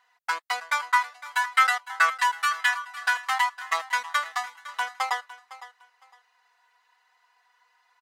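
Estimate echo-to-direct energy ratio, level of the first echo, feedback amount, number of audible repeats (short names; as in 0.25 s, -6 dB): -16.5 dB, -16.5 dB, 22%, 2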